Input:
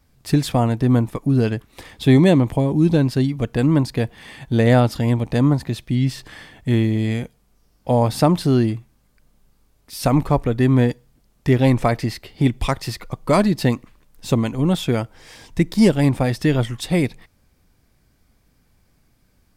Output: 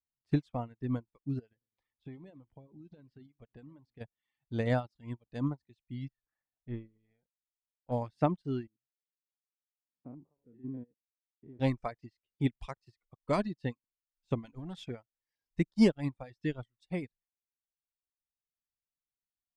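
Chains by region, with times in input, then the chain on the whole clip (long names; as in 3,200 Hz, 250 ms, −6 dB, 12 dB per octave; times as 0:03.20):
0:01.39–0:04.01: high-shelf EQ 5,300 Hz −10 dB + downward compressor 5 to 1, threshold −19 dBFS + feedback echo with a swinging delay time 111 ms, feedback 52%, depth 219 cents, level −16 dB
0:06.08–0:07.92: gain on one half-wave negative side −3 dB + high-frequency loss of the air 480 metres
0:08.67–0:11.60: spectrum averaged block by block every 100 ms + resonant band-pass 260 Hz, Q 1.3
0:14.44–0:14.90: leveller curve on the samples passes 2 + downward compressor 16 to 1, threshold −15 dBFS
whole clip: low-pass filter 6,100 Hz 12 dB per octave; reverb reduction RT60 1.6 s; expander for the loud parts 2.5 to 1, over −35 dBFS; level −7.5 dB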